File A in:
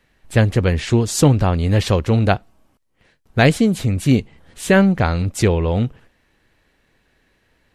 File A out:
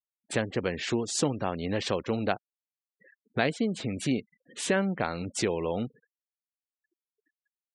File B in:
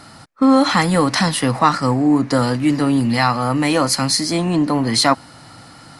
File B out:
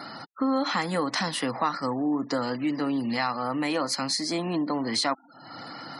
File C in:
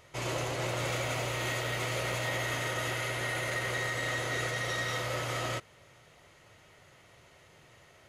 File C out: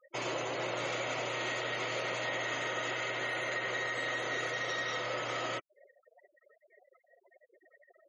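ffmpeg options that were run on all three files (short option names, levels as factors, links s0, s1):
-af "highpass=230,lowpass=8000,acompressor=threshold=0.00794:ratio=2,afftfilt=real='re*gte(hypot(re,im),0.00447)':imag='im*gte(hypot(re,im),0.00447)':win_size=1024:overlap=0.75,volume=1.78"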